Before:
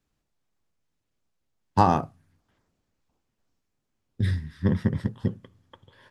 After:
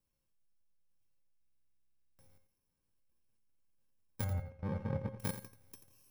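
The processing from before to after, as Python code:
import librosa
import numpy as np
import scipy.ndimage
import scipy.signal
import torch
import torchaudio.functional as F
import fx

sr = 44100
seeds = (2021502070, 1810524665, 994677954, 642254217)

y = fx.bit_reversed(x, sr, seeds[0], block=64)
y = fx.level_steps(y, sr, step_db=17)
y = fx.bessel_lowpass(y, sr, hz=1100.0, order=2, at=(4.24, 5.2))
y = fx.comb_fb(y, sr, f0_hz=540.0, decay_s=0.33, harmonics='all', damping=0.0, mix_pct=80)
y = fx.echo_feedback(y, sr, ms=86, feedback_pct=20, wet_db=-11.5)
y = fx.buffer_glitch(y, sr, at_s=(1.4,), block=2048, repeats=16)
y = F.gain(torch.from_numpy(y), 12.5).numpy()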